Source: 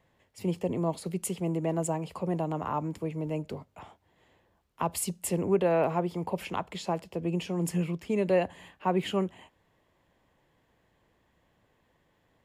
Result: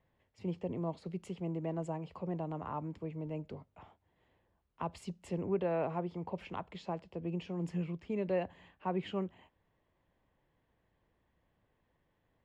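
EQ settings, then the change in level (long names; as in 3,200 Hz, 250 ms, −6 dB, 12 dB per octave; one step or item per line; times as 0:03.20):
high-frequency loss of the air 150 metres
low-shelf EQ 83 Hz +6.5 dB
−8.0 dB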